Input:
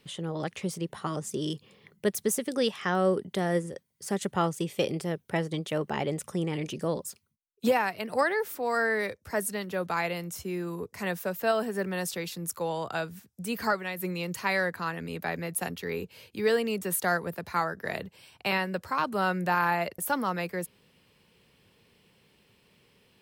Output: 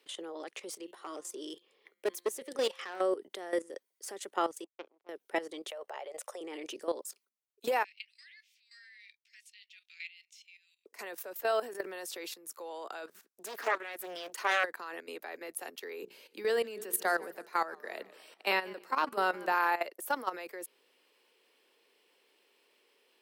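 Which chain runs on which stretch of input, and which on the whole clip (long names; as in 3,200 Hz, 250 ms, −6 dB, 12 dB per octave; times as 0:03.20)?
0:00.70–0:03.01: hum removal 175.6 Hz, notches 26 + hard clipping −22.5 dBFS
0:04.64–0:05.09: power curve on the samples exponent 3 + head-to-tape spacing loss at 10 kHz 36 dB
0:05.70–0:06.41: low shelf with overshoot 410 Hz −12.5 dB, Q 3 + mains-hum notches 50/100/150/200/250 Hz + downward compressor 4 to 1, threshold −32 dBFS
0:07.84–0:10.86: Butterworth high-pass 2,300 Hz 48 dB per octave + high-frequency loss of the air 170 metres + double-tracking delay 19 ms −11.5 dB
0:13.07–0:14.64: parametric band 1,400 Hz +7 dB 0.44 octaves + highs frequency-modulated by the lows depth 0.68 ms
0:16.02–0:19.52: parametric band 190 Hz +9 dB 1 octave + mains-hum notches 60/120/180/240/300/360/420/480 Hz + feedback echo with a swinging delay time 151 ms, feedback 55%, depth 138 cents, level −20.5 dB
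whole clip: Butterworth high-pass 310 Hz 36 dB per octave; output level in coarse steps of 14 dB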